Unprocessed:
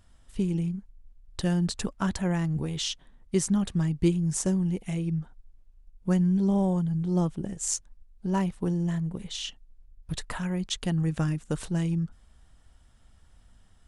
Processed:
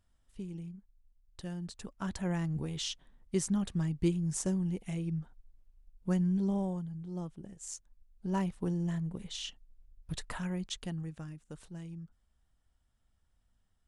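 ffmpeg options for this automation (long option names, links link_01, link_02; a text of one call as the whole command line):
ffmpeg -i in.wav -af "volume=2.5dB,afade=type=in:start_time=1.82:duration=0.48:silence=0.375837,afade=type=out:start_time=6.39:duration=0.54:silence=0.398107,afade=type=in:start_time=7.75:duration=0.6:silence=0.375837,afade=type=out:start_time=10.47:duration=0.71:silence=0.266073" out.wav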